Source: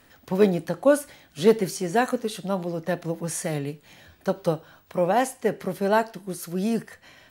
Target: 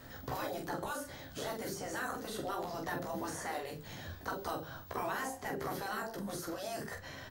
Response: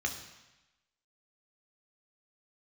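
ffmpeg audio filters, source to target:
-filter_complex "[0:a]equalizer=f=100:t=o:w=0.67:g=8,equalizer=f=2500:t=o:w=0.67:g=-8,equalizer=f=10000:t=o:w=0.67:g=-8,acrossover=split=1800|7200[s0][s1][s2];[s0]acompressor=threshold=0.0398:ratio=4[s3];[s1]acompressor=threshold=0.002:ratio=4[s4];[s2]acompressor=threshold=0.00224:ratio=4[s5];[s3][s4][s5]amix=inputs=3:normalize=0,acrossover=split=1800[s6][s7];[s7]alimiter=level_in=7.5:limit=0.0631:level=0:latency=1:release=32,volume=0.133[s8];[s6][s8]amix=inputs=2:normalize=0,afftfilt=real='re*lt(hypot(re,im),0.0794)':imag='im*lt(hypot(re,im),0.0794)':win_size=1024:overlap=0.75,aecho=1:1:15|45:0.596|0.562,volume=1.5"

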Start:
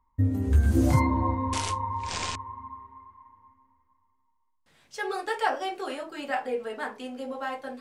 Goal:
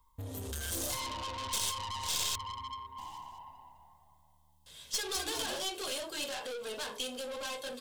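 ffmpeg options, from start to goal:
-filter_complex "[0:a]equalizer=f=3400:t=o:w=0.26:g=7,aecho=1:1:1.9:0.42,acrossover=split=400[s0][s1];[s0]acompressor=threshold=0.0158:ratio=5[s2];[s2][s1]amix=inputs=2:normalize=0,alimiter=level_in=1.06:limit=0.0631:level=0:latency=1:release=118,volume=0.944,asoftclip=type=tanh:threshold=0.0126,aexciter=amount=3.6:drive=6:freq=2900,aeval=exprs='0.126*(cos(1*acos(clip(val(0)/0.126,-1,1)))-cos(1*PI/2))+0.0178*(cos(4*acos(clip(val(0)/0.126,-1,1)))-cos(4*PI/2))':c=same,asplit=3[s3][s4][s5];[s3]afade=t=out:st=2.97:d=0.02[s6];[s4]asplit=6[s7][s8][s9][s10][s11][s12];[s8]adelay=206,afreqshift=-75,volume=0.668[s13];[s9]adelay=412,afreqshift=-150,volume=0.282[s14];[s10]adelay=618,afreqshift=-225,volume=0.117[s15];[s11]adelay=824,afreqshift=-300,volume=0.0495[s16];[s12]adelay=1030,afreqshift=-375,volume=0.0209[s17];[s7][s13][s14][s15][s16][s17]amix=inputs=6:normalize=0,afade=t=in:st=2.97:d=0.02,afade=t=out:st=5.59:d=0.02[s18];[s5]afade=t=in:st=5.59:d=0.02[s19];[s6][s18][s19]amix=inputs=3:normalize=0"

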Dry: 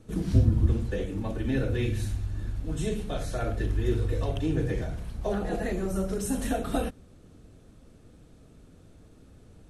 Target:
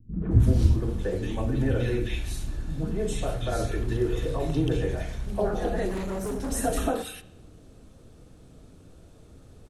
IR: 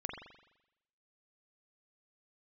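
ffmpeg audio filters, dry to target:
-filter_complex "[0:a]bandreject=f=50:t=h:w=6,bandreject=f=100:t=h:w=6,bandreject=f=150:t=h:w=6,bandreject=f=200:t=h:w=6,acrossover=split=230|1900[s0][s1][s2];[s1]adelay=130[s3];[s2]adelay=310[s4];[s0][s3][s4]amix=inputs=3:normalize=0,asettb=1/sr,asplit=3[s5][s6][s7];[s5]atrim=end=5.894[s8];[s6]atrim=start=5.89:end=6.52,asetpts=PTS-STARTPTS,afade=t=in:d=0.004:c=qsin,afade=t=out:st=0.626:d=0.004:c=qsin,asoftclip=type=hard:threshold=0.0266[s9];[s7]atrim=start=6.516[s10];[s8][s9]acrossfade=d=0.004:c1=hsin:c2=qsin[s11];[s11][s10]acrossfade=d=0.004:c1=qsin:c2=hsin,asplit=2[s12][s13];[1:a]atrim=start_sample=2205,asetrate=48510,aresample=44100[s14];[s13][s14]afir=irnorm=-1:irlink=0,volume=0.335[s15];[s12][s15]amix=inputs=2:normalize=0,volume=1.26"

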